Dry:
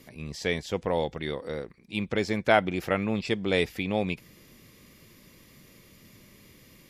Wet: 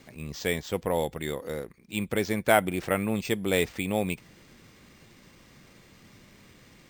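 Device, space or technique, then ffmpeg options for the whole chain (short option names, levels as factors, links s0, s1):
crushed at another speed: -af "asetrate=22050,aresample=44100,acrusher=samples=8:mix=1:aa=0.000001,asetrate=88200,aresample=44100"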